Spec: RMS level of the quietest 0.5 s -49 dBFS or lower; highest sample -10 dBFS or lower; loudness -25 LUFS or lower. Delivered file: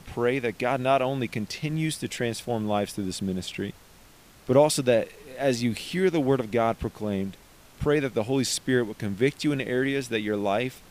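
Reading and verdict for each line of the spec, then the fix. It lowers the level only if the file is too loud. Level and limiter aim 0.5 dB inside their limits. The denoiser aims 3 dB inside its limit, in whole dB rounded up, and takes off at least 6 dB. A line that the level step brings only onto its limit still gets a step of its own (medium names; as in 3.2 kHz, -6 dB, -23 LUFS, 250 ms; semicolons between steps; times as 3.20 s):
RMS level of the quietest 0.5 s -53 dBFS: pass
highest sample -7.0 dBFS: fail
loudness -26.5 LUFS: pass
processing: peak limiter -10.5 dBFS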